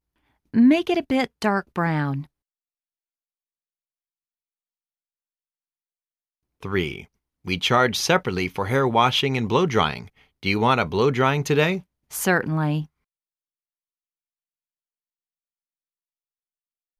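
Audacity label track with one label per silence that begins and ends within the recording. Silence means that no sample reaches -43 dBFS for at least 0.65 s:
2.250000	6.630000	silence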